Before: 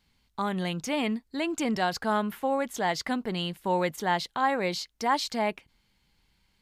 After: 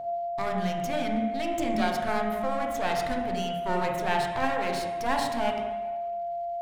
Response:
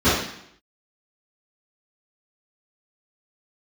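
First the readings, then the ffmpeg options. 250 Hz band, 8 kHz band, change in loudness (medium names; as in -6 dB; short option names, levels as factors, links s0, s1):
-0.5 dB, -3.5 dB, 0.0 dB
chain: -filter_complex "[0:a]bandreject=f=4800:w=20,aeval=exprs='max(val(0),0)':c=same,aeval=exprs='val(0)+0.02*sin(2*PI*690*n/s)':c=same,asplit=2[s0][s1];[1:a]atrim=start_sample=2205,asetrate=23814,aresample=44100[s2];[s1][s2]afir=irnorm=-1:irlink=0,volume=0.0531[s3];[s0][s3]amix=inputs=2:normalize=0"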